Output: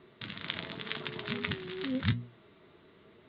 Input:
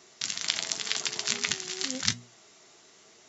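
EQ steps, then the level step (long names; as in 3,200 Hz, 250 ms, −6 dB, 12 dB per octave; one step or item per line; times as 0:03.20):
elliptic low-pass filter 3,700 Hz, stop band 40 dB
spectral tilt −3.5 dB per octave
parametric band 750 Hz −10 dB 0.27 octaves
0.0 dB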